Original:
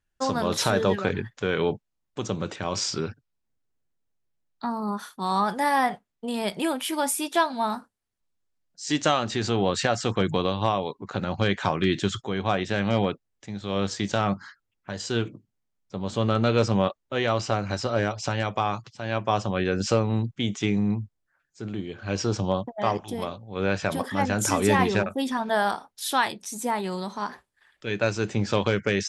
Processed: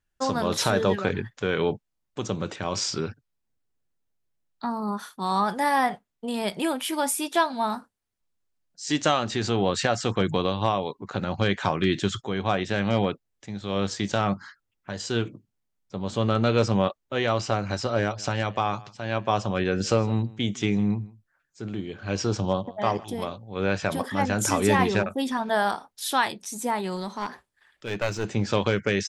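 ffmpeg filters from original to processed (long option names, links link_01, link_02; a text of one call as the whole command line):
ffmpeg -i in.wav -filter_complex "[0:a]asplit=3[link_01][link_02][link_03];[link_01]afade=type=out:start_time=18.17:duration=0.02[link_04];[link_02]aecho=1:1:157:0.0841,afade=type=in:start_time=18.17:duration=0.02,afade=type=out:start_time=23.03:duration=0.02[link_05];[link_03]afade=type=in:start_time=23.03:duration=0.02[link_06];[link_04][link_05][link_06]amix=inputs=3:normalize=0,asettb=1/sr,asplit=3[link_07][link_08][link_09];[link_07]atrim=end=26.964[link_10];[link_08]atrim=start=26.96:end=28.3,asetpts=PTS-STARTPTS,afade=type=in:duration=0.004:curve=qsin,afade=type=out:start_time=1.336:duration=0.004:curve=qsin,aeval=exprs='clip(val(0),-1,0.0355)':channel_layout=same[link_11];[link_09]atrim=start=28.296[link_12];[link_10][link_11]acrossfade=duration=0.004:curve1=hsin:curve2=qsin[link_13];[link_13][link_12]acrossfade=duration=0.004:curve1=qsin:curve2=hsin" out.wav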